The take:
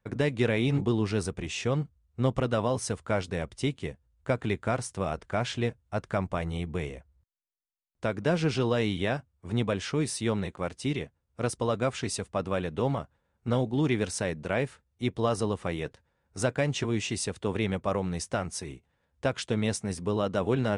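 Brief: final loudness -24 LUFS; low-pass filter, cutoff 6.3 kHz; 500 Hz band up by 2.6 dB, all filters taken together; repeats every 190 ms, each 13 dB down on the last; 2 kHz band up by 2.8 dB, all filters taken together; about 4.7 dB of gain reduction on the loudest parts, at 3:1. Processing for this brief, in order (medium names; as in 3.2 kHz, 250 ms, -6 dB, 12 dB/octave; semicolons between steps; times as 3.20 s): low-pass 6.3 kHz; peaking EQ 500 Hz +3 dB; peaking EQ 2 kHz +3.5 dB; compression 3:1, threshold -26 dBFS; feedback delay 190 ms, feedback 22%, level -13 dB; trim +8 dB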